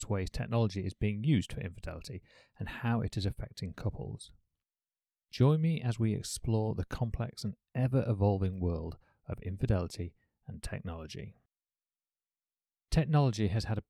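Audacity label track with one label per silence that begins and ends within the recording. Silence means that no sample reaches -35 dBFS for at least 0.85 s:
4.150000	5.340000	silence
11.240000	12.920000	silence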